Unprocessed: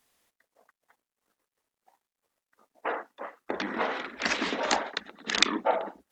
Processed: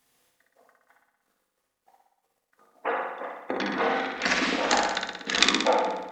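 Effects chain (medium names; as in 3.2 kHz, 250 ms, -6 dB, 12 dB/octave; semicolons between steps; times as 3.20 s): flutter echo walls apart 10.3 m, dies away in 1 s; on a send at -7 dB: reverberation RT60 0.30 s, pre-delay 3 ms; on the sum: trim +1 dB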